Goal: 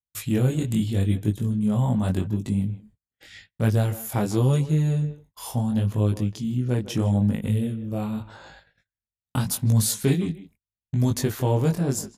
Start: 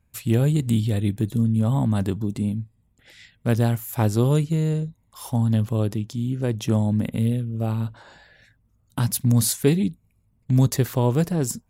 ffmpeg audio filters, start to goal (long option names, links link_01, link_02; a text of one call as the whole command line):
ffmpeg -i in.wav -filter_complex "[0:a]asplit=2[link_01][link_02];[link_02]adelay=150,highpass=300,lowpass=3400,asoftclip=type=hard:threshold=-15.5dB,volume=-14dB[link_03];[link_01][link_03]amix=inputs=2:normalize=0,asplit=2[link_04][link_05];[link_05]acompressor=threshold=-31dB:ratio=6,volume=-2dB[link_06];[link_04][link_06]amix=inputs=2:normalize=0,agate=range=-38dB:threshold=-45dB:ratio=16:detection=peak,flanger=delay=18:depth=5.4:speed=0.85,asetrate=42336,aresample=44100" out.wav